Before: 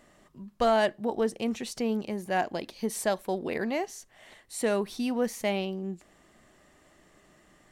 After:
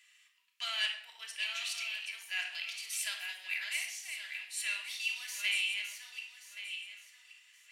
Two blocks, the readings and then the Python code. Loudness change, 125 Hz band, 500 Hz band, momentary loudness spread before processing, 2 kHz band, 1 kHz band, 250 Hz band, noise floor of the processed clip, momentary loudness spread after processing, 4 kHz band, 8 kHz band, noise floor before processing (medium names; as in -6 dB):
-6.0 dB, under -40 dB, -34.5 dB, 13 LU, +2.5 dB, -20.5 dB, under -40 dB, -65 dBFS, 13 LU, +6.0 dB, +0.5 dB, -61 dBFS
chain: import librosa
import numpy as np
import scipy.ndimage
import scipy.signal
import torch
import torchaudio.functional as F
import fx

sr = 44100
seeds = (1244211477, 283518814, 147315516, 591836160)

y = fx.reverse_delay_fb(x, sr, ms=563, feedback_pct=48, wet_db=-6.0)
y = fx.ladder_highpass(y, sr, hz=2200.0, resonance_pct=55)
y = fx.room_shoebox(y, sr, seeds[0], volume_m3=2100.0, walls='furnished', distance_m=3.0)
y = F.gain(torch.from_numpy(y), 6.5).numpy()